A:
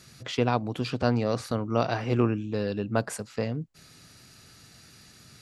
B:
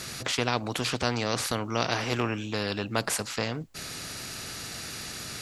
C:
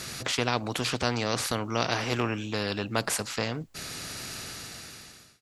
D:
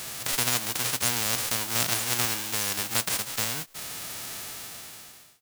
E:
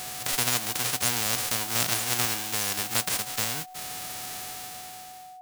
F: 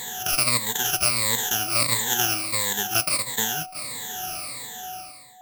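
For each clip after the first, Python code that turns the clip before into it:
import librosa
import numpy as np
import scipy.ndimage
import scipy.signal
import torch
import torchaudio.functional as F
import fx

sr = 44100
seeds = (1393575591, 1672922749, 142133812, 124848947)

y1 = fx.spectral_comp(x, sr, ratio=2.0)
y1 = F.gain(torch.from_numpy(y1), -1.0).numpy()
y2 = fx.fade_out_tail(y1, sr, length_s=1.06)
y3 = fx.envelope_flatten(y2, sr, power=0.1)
y3 = F.gain(torch.from_numpy(y3), 1.5).numpy()
y4 = y3 + 10.0 ** (-43.0 / 20.0) * np.sin(2.0 * np.pi * 740.0 * np.arange(len(y3)) / sr)
y5 = fx.spec_ripple(y4, sr, per_octave=1.0, drift_hz=-1.5, depth_db=24)
y5 = y5 + 10.0 ** (-21.0 / 20.0) * np.pad(y5, (int(650 * sr / 1000.0), 0))[:len(y5)]
y5 = F.gain(torch.from_numpy(y5), -2.0).numpy()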